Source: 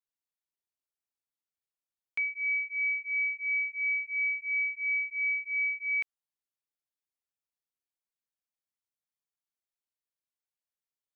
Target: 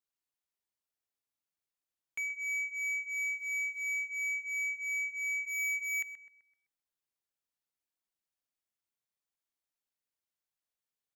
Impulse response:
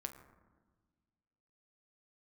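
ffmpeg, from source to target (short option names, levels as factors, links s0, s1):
-filter_complex "[0:a]asplit=3[s0][s1][s2];[s0]afade=t=out:st=5.44:d=0.02[s3];[s1]equalizer=f=2000:t=o:w=0.6:g=10,afade=t=in:st=5.44:d=0.02,afade=t=out:st=6.01:d=0.02[s4];[s2]afade=t=in:st=6.01:d=0.02[s5];[s3][s4][s5]amix=inputs=3:normalize=0,asoftclip=type=tanh:threshold=0.0224,asettb=1/sr,asplit=3[s6][s7][s8];[s6]atrim=end=3.144[s9];[s7]atrim=start=3.14:end=4.06,asetpts=PTS-STARTPTS,afade=t=in:d=0.004:c=qsin,afade=t=out:st=0.916:d=0.004:c=qsin,acrusher=bits=9:mode=log:mix=0:aa=0.000001[s10];[s8]atrim=start=4.056[s11];[s9][s10]acrossfade=d=0.004:c1=hsin:c2=qsin[s12];[s12][s11]acrossfade=d=0.004:c1=qsin:c2=hsin,asplit=2[s13][s14];[s14]adelay=128,lowpass=f=2200:p=1,volume=0.335,asplit=2[s15][s16];[s16]adelay=128,lowpass=f=2200:p=1,volume=0.48,asplit=2[s17][s18];[s18]adelay=128,lowpass=f=2200:p=1,volume=0.48,asplit=2[s19][s20];[s20]adelay=128,lowpass=f=2200:p=1,volume=0.48,asplit=2[s21][s22];[s22]adelay=128,lowpass=f=2200:p=1,volume=0.48[s23];[s13][s15][s17][s19][s21][s23]amix=inputs=6:normalize=0"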